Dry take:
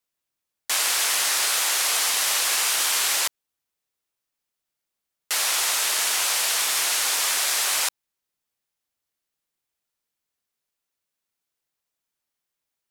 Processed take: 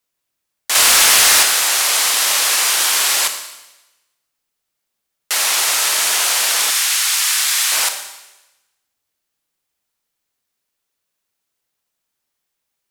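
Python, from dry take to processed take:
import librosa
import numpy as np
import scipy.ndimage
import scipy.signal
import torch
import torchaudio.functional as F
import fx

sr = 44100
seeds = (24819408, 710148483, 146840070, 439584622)

y = fx.leveller(x, sr, passes=2, at=(0.75, 1.43))
y = fx.highpass(y, sr, hz=1300.0, slope=12, at=(6.7, 7.72))
y = fx.rev_schroeder(y, sr, rt60_s=1.0, comb_ms=29, drr_db=6.5)
y = y * librosa.db_to_amplitude(6.0)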